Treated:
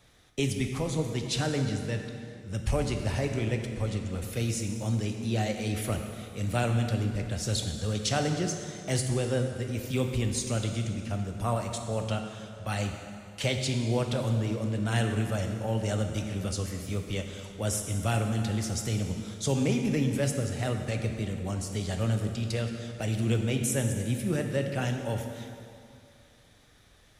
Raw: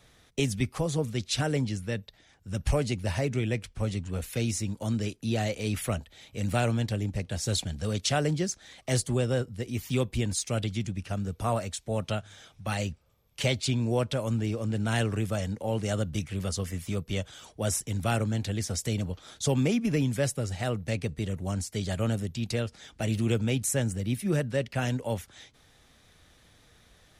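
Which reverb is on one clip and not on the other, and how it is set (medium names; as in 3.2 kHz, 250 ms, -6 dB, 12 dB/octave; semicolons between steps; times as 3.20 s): plate-style reverb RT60 2.5 s, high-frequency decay 0.75×, DRR 4 dB; trim -2 dB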